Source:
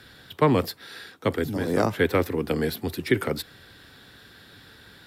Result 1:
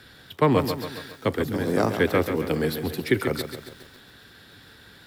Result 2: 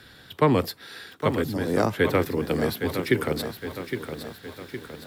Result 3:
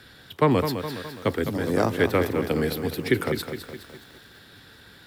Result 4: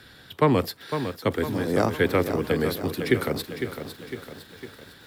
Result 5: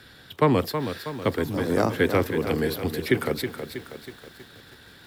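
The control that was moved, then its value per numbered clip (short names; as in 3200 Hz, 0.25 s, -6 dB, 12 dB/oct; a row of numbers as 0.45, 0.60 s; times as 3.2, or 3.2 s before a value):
lo-fi delay, time: 0.137, 0.813, 0.208, 0.505, 0.321 s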